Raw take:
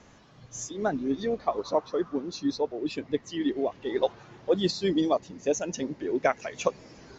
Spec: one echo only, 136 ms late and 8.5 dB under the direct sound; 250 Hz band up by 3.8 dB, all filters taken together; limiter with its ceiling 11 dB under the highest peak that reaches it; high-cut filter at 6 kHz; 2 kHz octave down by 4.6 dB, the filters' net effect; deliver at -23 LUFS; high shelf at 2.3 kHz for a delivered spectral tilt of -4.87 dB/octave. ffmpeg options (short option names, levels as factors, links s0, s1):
-af "lowpass=6000,equalizer=f=250:t=o:g=5,equalizer=f=2000:t=o:g=-8.5,highshelf=f=2300:g=4,alimiter=limit=0.0891:level=0:latency=1,aecho=1:1:136:0.376,volume=2.51"